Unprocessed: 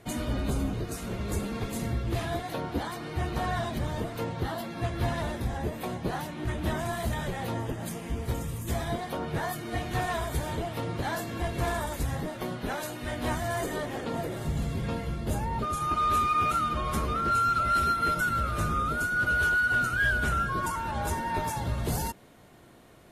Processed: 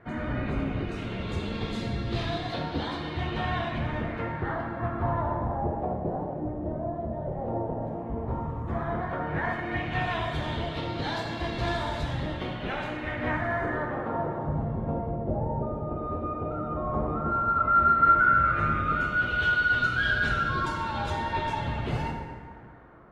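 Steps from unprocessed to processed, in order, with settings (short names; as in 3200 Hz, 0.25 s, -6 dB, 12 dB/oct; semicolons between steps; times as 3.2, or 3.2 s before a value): 6.08–7.44 compressor 3:1, threshold -32 dBFS, peak gain reduction 6.5 dB; LFO low-pass sine 0.11 Hz 590–4100 Hz; plate-style reverb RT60 2 s, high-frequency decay 0.5×, DRR 1 dB; gain -2.5 dB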